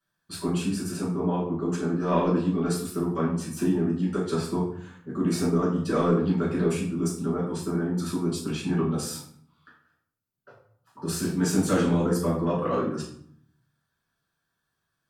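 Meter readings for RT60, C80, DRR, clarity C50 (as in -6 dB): 0.65 s, 8.0 dB, -8.5 dB, 4.5 dB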